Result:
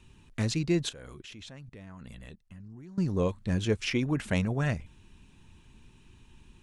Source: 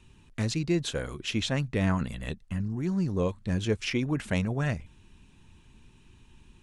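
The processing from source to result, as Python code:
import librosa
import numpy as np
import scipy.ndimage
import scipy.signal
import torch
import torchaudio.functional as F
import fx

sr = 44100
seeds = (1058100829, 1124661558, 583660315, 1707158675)

y = fx.level_steps(x, sr, step_db=23, at=(0.89, 2.98))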